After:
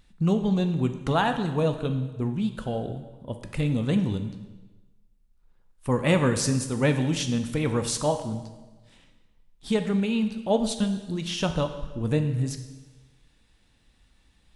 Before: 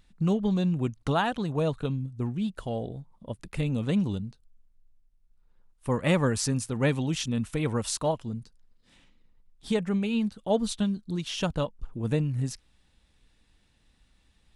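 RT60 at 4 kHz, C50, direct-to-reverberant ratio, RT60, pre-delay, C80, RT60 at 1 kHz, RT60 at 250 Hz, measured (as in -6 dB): 1.1 s, 9.5 dB, 7.0 dB, 1.2 s, 5 ms, 11.5 dB, 1.2 s, 1.2 s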